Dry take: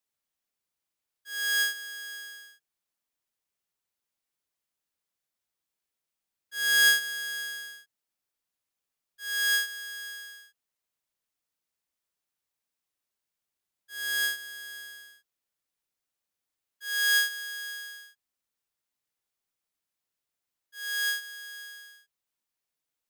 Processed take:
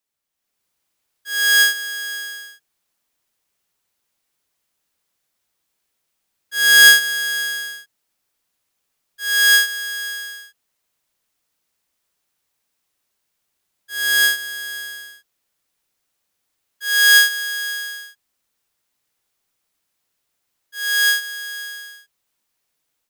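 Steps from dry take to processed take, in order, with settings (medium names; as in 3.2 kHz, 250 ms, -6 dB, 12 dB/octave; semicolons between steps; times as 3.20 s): level rider gain up to 9 dB; trim +3.5 dB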